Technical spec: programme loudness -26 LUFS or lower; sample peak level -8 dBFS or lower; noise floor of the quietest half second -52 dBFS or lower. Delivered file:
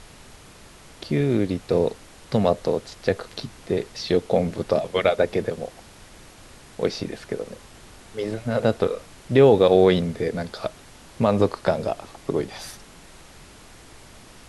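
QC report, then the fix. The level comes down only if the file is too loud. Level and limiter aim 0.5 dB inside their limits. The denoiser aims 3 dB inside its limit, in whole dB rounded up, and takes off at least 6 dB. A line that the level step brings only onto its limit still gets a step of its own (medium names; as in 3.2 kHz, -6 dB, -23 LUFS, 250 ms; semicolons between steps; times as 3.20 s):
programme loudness -23.0 LUFS: fail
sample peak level -3.5 dBFS: fail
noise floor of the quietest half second -47 dBFS: fail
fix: noise reduction 6 dB, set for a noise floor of -47 dBFS; trim -3.5 dB; peak limiter -8.5 dBFS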